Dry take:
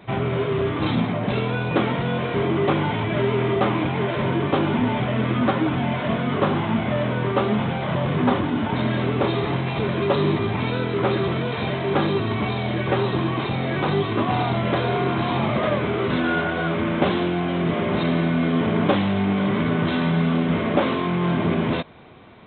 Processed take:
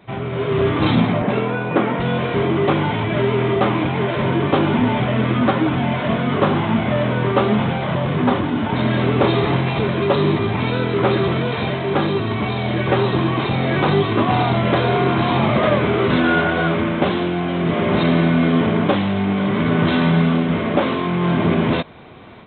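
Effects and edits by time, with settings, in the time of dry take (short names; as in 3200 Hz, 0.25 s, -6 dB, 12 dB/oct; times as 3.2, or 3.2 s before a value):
1.22–2 BPF 160–2300 Hz
whole clip: AGC; gain -3 dB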